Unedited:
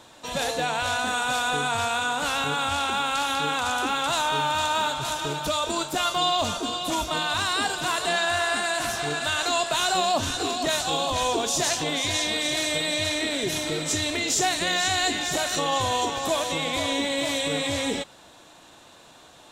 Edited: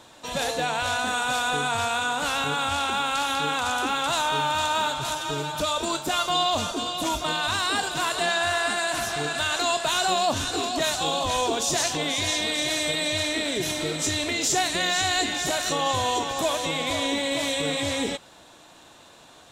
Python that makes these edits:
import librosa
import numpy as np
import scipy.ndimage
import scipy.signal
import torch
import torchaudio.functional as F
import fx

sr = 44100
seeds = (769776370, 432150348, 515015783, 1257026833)

y = fx.edit(x, sr, fx.stretch_span(start_s=5.15, length_s=0.27, factor=1.5), tone=tone)